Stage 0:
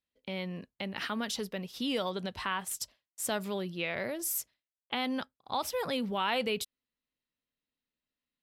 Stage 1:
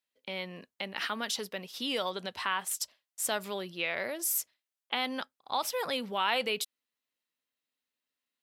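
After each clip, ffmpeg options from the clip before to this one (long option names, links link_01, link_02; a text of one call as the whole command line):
ffmpeg -i in.wav -af "highpass=frequency=580:poles=1,volume=3dB" out.wav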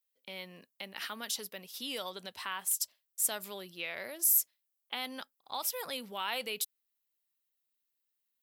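ffmpeg -i in.wav -af "aemphasis=mode=production:type=50fm,volume=-7.5dB" out.wav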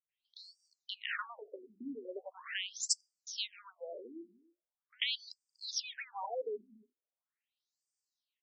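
ffmpeg -i in.wav -filter_complex "[0:a]bandreject=frequency=50:width_type=h:width=6,bandreject=frequency=100:width_type=h:width=6,bandreject=frequency=150:width_type=h:width=6,bandreject=frequency=200:width_type=h:width=6,bandreject=frequency=250:width_type=h:width=6,bandreject=frequency=300:width_type=h:width=6,bandreject=frequency=350:width_type=h:width=6,acrossover=split=170|890[link_01][link_02][link_03];[link_03]adelay=90[link_04];[link_01]adelay=290[link_05];[link_05][link_02][link_04]amix=inputs=3:normalize=0,afftfilt=real='re*between(b*sr/1024,280*pow(6500/280,0.5+0.5*sin(2*PI*0.41*pts/sr))/1.41,280*pow(6500/280,0.5+0.5*sin(2*PI*0.41*pts/sr))*1.41)':imag='im*between(b*sr/1024,280*pow(6500/280,0.5+0.5*sin(2*PI*0.41*pts/sr))/1.41,280*pow(6500/280,0.5+0.5*sin(2*PI*0.41*pts/sr))*1.41)':win_size=1024:overlap=0.75,volume=5.5dB" out.wav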